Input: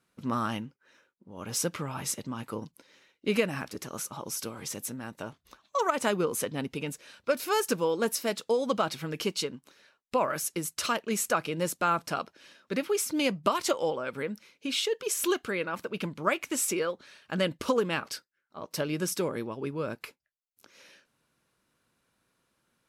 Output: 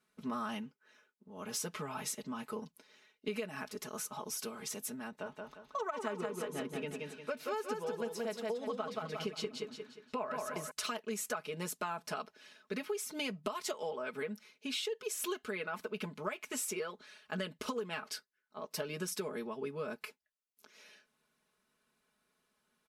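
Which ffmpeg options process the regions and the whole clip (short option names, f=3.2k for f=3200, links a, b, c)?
-filter_complex "[0:a]asettb=1/sr,asplit=3[a][b][c];[a]atrim=end=5.084[d];[b]atrim=start=5.08:end=10.71,asetpts=PTS-STARTPTS,afade=t=in:d=0.004:c=qsin,afade=t=out:st=5.626:d=0.004:c=qsin,lowpass=f=3k:p=1,aecho=1:1:177|354|531|708|885:0.631|0.24|0.0911|0.0346|0.0132,atrim=end_sample=248283[e];[c]atrim=start=10.706[f];[d][e]acrossfade=d=0.004:c1=hsin:c2=qsin[g];[g][f]acrossfade=d=0.004:c1=qsin:c2=hsin,bass=f=250:g=-5,treble=f=4k:g=-1,aecho=1:1:4.7:0.86,acompressor=threshold=-29dB:ratio=6,volume=-5.5dB"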